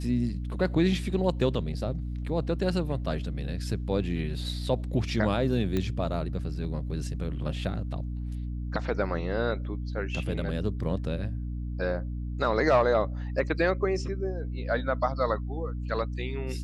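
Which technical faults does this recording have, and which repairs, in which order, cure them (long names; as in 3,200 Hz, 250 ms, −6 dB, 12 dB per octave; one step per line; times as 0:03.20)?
mains hum 60 Hz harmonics 5 −33 dBFS
0:05.77: click −16 dBFS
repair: click removal
hum removal 60 Hz, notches 5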